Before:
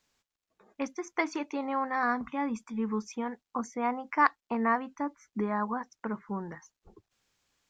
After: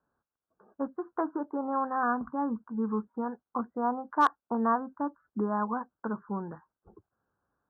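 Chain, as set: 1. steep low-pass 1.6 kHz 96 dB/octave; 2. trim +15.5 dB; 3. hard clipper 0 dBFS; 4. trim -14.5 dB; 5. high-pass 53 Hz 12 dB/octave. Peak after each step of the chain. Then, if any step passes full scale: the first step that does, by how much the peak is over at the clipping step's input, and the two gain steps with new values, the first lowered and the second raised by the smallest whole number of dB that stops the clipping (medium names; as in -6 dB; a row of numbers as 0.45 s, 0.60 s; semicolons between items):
-11.5 dBFS, +4.0 dBFS, 0.0 dBFS, -14.5 dBFS, -14.0 dBFS; step 2, 4.0 dB; step 2 +11.5 dB, step 4 -10.5 dB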